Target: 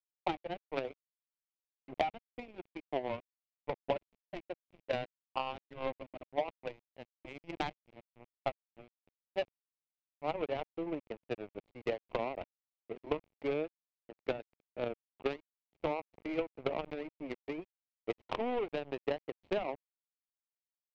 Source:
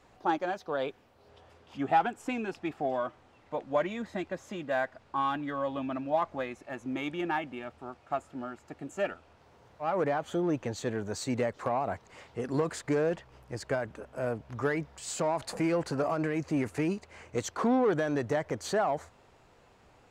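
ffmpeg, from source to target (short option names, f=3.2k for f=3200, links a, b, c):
-filter_complex "[0:a]highpass=f=200:p=1,acrossover=split=360 4900:gain=0.0794 1 0.0891[a][b][c];[a][b][c]amix=inputs=3:normalize=0,bandreject=f=1.2k:w=7,aeval=exprs='0.178*(cos(1*acos(clip(val(0)/0.178,-1,1)))-cos(1*PI/2))+0.0224*(cos(7*acos(clip(val(0)/0.178,-1,1)))-cos(7*PI/2))':c=same,acompressor=threshold=-39dB:ratio=16,aeval=exprs='val(0)*gte(abs(val(0)),0.00224)':c=same,adynamicsmooth=sensitivity=2.5:basefreq=630,highshelf=f=2k:t=q:w=3:g=6,asetrate=42336,aresample=44100,volume=11.5dB"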